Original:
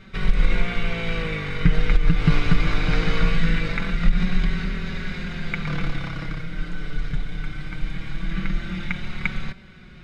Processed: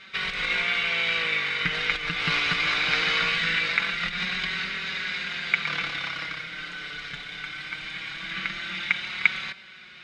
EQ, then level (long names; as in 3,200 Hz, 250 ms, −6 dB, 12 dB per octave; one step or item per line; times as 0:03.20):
resonant band-pass 3,200 Hz, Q 0.84
+8.5 dB